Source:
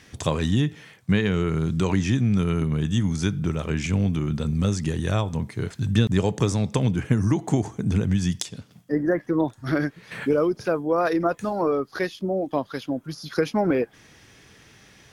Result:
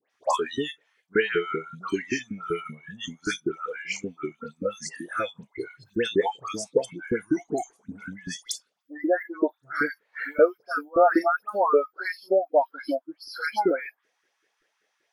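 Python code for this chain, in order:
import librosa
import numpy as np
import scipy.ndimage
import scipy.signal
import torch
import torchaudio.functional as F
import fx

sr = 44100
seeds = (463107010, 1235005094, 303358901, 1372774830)

y = fx.filter_lfo_highpass(x, sr, shape='saw_up', hz=5.2, low_hz=360.0, high_hz=1700.0, q=3.0)
y = fx.noise_reduce_blind(y, sr, reduce_db=23)
y = fx.dispersion(y, sr, late='highs', ms=106.0, hz=1900.0)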